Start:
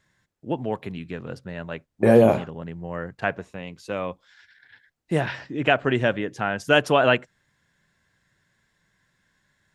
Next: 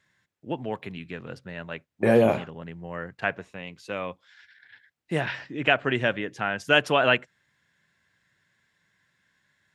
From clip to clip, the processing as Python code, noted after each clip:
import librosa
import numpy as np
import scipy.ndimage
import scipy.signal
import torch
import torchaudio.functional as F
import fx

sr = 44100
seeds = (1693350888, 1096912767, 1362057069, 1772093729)

y = scipy.signal.sosfilt(scipy.signal.butter(2, 73.0, 'highpass', fs=sr, output='sos'), x)
y = fx.peak_eq(y, sr, hz=2400.0, db=6.0, octaves=1.8)
y = y * librosa.db_to_amplitude(-4.5)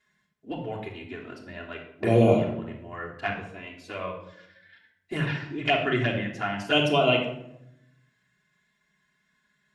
y = fx.env_flanger(x, sr, rest_ms=4.8, full_db=-18.0)
y = fx.room_shoebox(y, sr, seeds[0], volume_m3=2100.0, walls='furnished', distance_m=3.2)
y = y * librosa.db_to_amplitude(-1.5)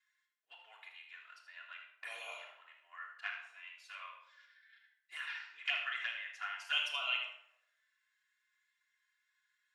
y = scipy.signal.sosfilt(scipy.signal.cheby2(4, 80, 200.0, 'highpass', fs=sr, output='sos'), x)
y = y + 10.0 ** (-9.5 / 20.0) * np.pad(y, (int(78 * sr / 1000.0), 0))[:len(y)]
y = y * librosa.db_to_amplitude(-8.5)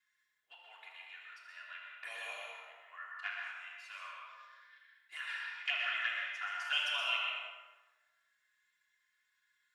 y = fx.rev_plate(x, sr, seeds[1], rt60_s=1.2, hf_ratio=0.6, predelay_ms=105, drr_db=0.5)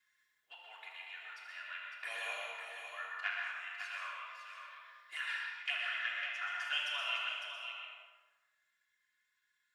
y = fx.rider(x, sr, range_db=3, speed_s=0.5)
y = y + 10.0 ** (-7.5 / 20.0) * np.pad(y, (int(554 * sr / 1000.0), 0))[:len(y)]